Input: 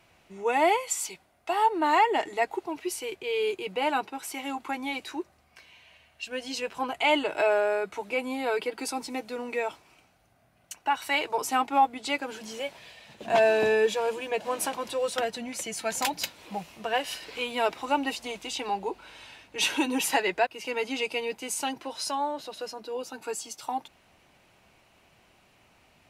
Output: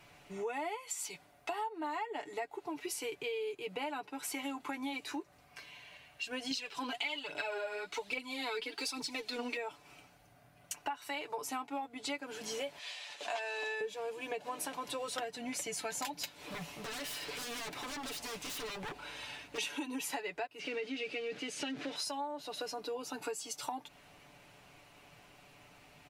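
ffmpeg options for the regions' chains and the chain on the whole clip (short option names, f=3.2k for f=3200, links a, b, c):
-filter_complex "[0:a]asettb=1/sr,asplit=3[a][b][c];[a]atrim=end=6.514[d];[b]atrim=start=6.51:end=9.57,asetpts=PTS-STARTPTS,afade=t=in:d=0.004:c=qsin,afade=t=out:st=3.056:d=0.004:c=qsin,equalizer=f=4.1k:t=o:w=1.6:g=12,aphaser=in_gain=1:out_gain=1:delay=4.5:decay=0.6:speed=1.2:type=triangular[e];[c]atrim=start=9.566[f];[d][e]acrossfade=d=0.004:c1=hsin:c2=qsin[g];[g][f]acrossfade=d=0.004:c1=qsin:c2=hsin,asettb=1/sr,asplit=3[h][i][j];[h]atrim=end=12.794[k];[i]atrim=start=12.79:end=13.81,asetpts=PTS-STARTPTS,afade=t=in:d=0.004:c=qsin,afade=t=out:st=1.016:d=0.004:c=qsin,highpass=740,lowpass=7.1k,highshelf=f=3.8k:g=9.5[l];[j]atrim=start=13.806[m];[k][l]acrossfade=d=0.004:c1=hsin:c2=qsin[n];[n][m]acrossfade=d=0.004:c1=qsin:c2=hsin,asettb=1/sr,asplit=3[o][p][q];[o]atrim=end=16.404[r];[p]atrim=start=16.4:end=19.58,asetpts=PTS-STARTPTS,afade=t=in:d=0.004:c=qsin,afade=t=out:st=3.176:d=0.004:c=qsin,acompressor=threshold=-35dB:ratio=2:attack=3.2:release=140:knee=1:detection=peak,aeval=exprs='0.0119*(abs(mod(val(0)/0.0119+3,4)-2)-1)':c=same[s];[q]atrim=start=19.576[t];[r][s]acrossfade=d=0.004:c1=hsin:c2=qsin[u];[u][t]acrossfade=d=0.004:c1=qsin:c2=hsin,asettb=1/sr,asplit=3[v][w][x];[v]atrim=end=20.594[y];[w]atrim=start=20.59:end=21.96,asetpts=PTS-STARTPTS,afade=t=in:d=0.004:c=qsin,afade=t=out:st=1.366:d=0.004:c=qsin,aeval=exprs='val(0)+0.5*0.0237*sgn(val(0))':c=same,highpass=160,lowpass=3.7k,equalizer=f=960:t=o:w=0.64:g=-14[z];[x]atrim=start=21.956[aa];[y][z]acrossfade=d=0.004:c1=hsin:c2=qsin[ab];[ab][aa]acrossfade=d=0.004:c1=qsin:c2=hsin,aecho=1:1:6.9:0.58,acompressor=threshold=-37dB:ratio=10,volume=1dB"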